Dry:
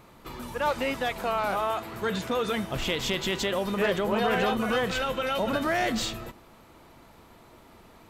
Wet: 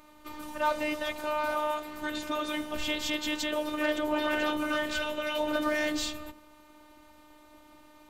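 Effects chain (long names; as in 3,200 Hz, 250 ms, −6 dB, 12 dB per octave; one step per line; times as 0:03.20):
hum removal 49.19 Hz, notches 17
phases set to zero 302 Hz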